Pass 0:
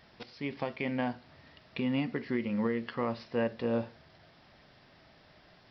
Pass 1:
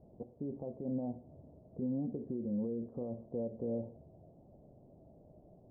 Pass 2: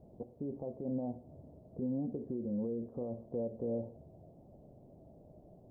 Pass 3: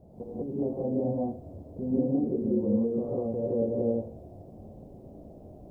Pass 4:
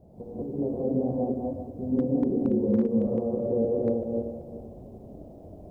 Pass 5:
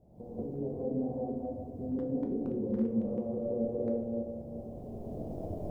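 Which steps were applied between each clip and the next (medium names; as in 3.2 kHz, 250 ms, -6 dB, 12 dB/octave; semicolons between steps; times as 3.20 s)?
compression, threshold -32 dBFS, peak gain reduction 6.5 dB; peak limiter -32 dBFS, peak gain reduction 10 dB; steep low-pass 650 Hz 36 dB/octave; trim +3.5 dB
dynamic bell 180 Hz, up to -3 dB, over -48 dBFS, Q 0.92; trim +2 dB
gated-style reverb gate 220 ms rising, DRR -6.5 dB; trim +3 dB
backward echo that repeats 192 ms, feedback 45%, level -2 dB; hard clipper -15 dBFS, distortion -31 dB; endings held to a fixed fall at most 210 dB/s
recorder AGC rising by 13 dB/s; simulated room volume 65 m³, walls mixed, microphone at 0.44 m; trim -9 dB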